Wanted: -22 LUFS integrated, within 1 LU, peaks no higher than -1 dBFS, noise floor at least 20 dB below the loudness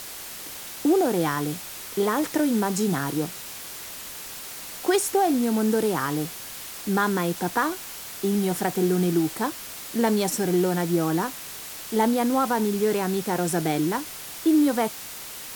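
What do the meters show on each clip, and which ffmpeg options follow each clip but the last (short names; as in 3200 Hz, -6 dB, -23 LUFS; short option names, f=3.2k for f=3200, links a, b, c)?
noise floor -38 dBFS; noise floor target -45 dBFS; loudness -25.0 LUFS; peak -9.0 dBFS; loudness target -22.0 LUFS
-> -af "afftdn=nr=7:nf=-38"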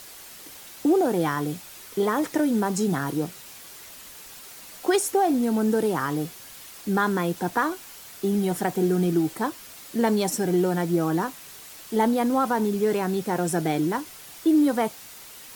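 noise floor -44 dBFS; noise floor target -45 dBFS
-> -af "afftdn=nr=6:nf=-44"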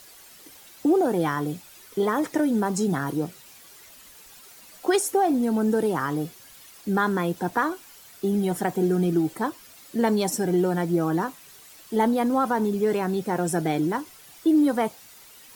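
noise floor -49 dBFS; loudness -24.5 LUFS; peak -9.5 dBFS; loudness target -22.0 LUFS
-> -af "volume=2.5dB"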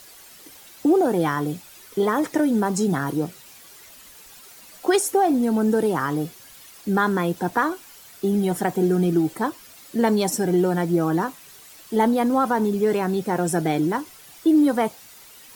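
loudness -22.0 LUFS; peak -7.0 dBFS; noise floor -47 dBFS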